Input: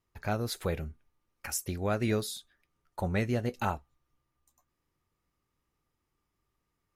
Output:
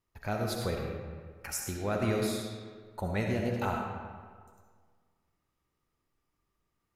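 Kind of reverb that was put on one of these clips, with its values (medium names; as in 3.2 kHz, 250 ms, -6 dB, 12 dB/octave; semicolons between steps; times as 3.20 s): algorithmic reverb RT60 1.7 s, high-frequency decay 0.65×, pre-delay 25 ms, DRR 0.5 dB; trim -2.5 dB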